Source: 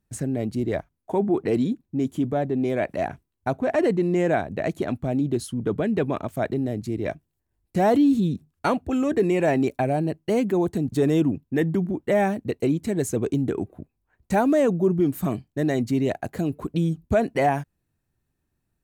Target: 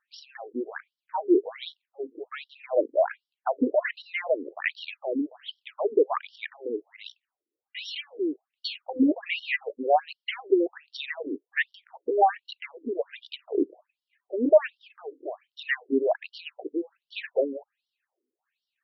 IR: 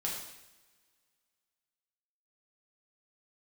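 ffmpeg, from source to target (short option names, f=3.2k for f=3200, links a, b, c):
-af "aphaser=in_gain=1:out_gain=1:delay=2.5:decay=0.47:speed=1.1:type=sinusoidal,equalizer=f=2.6k:w=0.43:g=10,afftfilt=real='re*between(b*sr/1024,350*pow(4100/350,0.5+0.5*sin(2*PI*1.3*pts/sr))/1.41,350*pow(4100/350,0.5+0.5*sin(2*PI*1.3*pts/sr))*1.41)':imag='im*between(b*sr/1024,350*pow(4100/350,0.5+0.5*sin(2*PI*1.3*pts/sr))/1.41,350*pow(4100/350,0.5+0.5*sin(2*PI*1.3*pts/sr))*1.41)':win_size=1024:overlap=0.75"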